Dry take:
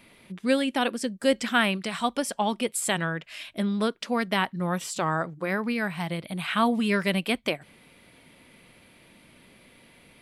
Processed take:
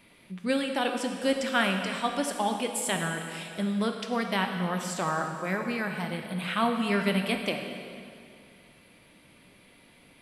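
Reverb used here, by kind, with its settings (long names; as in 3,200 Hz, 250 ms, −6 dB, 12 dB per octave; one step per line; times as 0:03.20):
dense smooth reverb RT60 2.4 s, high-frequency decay 0.9×, DRR 3.5 dB
level −3.5 dB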